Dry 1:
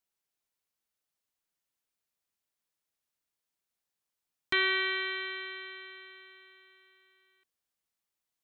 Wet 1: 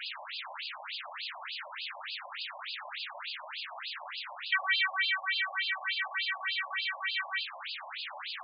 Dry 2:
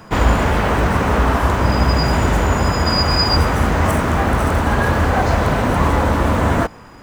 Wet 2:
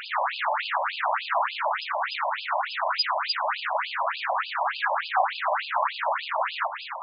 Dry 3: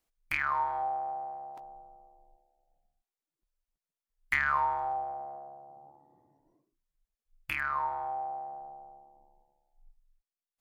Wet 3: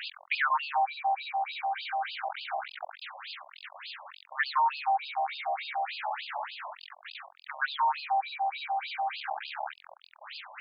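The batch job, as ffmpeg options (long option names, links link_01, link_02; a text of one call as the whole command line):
ffmpeg -i in.wav -af "aeval=exprs='val(0)+0.5*0.158*sgn(val(0))':channel_layout=same,acrusher=bits=4:mix=0:aa=0.5,afftfilt=real='re*between(b*sr/1024,760*pow(3600/760,0.5+0.5*sin(2*PI*3.4*pts/sr))/1.41,760*pow(3600/760,0.5+0.5*sin(2*PI*3.4*pts/sr))*1.41)':imag='im*between(b*sr/1024,760*pow(3600/760,0.5+0.5*sin(2*PI*3.4*pts/sr))/1.41,760*pow(3600/760,0.5+0.5*sin(2*PI*3.4*pts/sr))*1.41)':win_size=1024:overlap=0.75,volume=-4dB" out.wav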